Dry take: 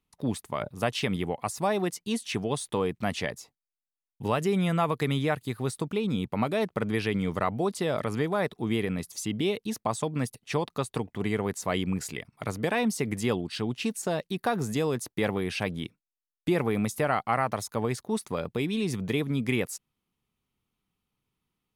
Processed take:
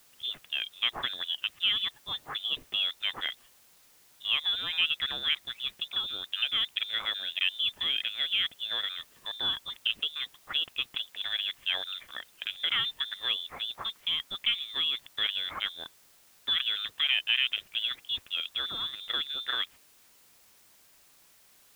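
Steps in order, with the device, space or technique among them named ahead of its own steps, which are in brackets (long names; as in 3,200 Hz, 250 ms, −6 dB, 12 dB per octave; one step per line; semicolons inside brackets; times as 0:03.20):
scrambled radio voice (band-pass filter 360–2,600 Hz; voice inversion scrambler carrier 3,800 Hz; white noise bed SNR 27 dB)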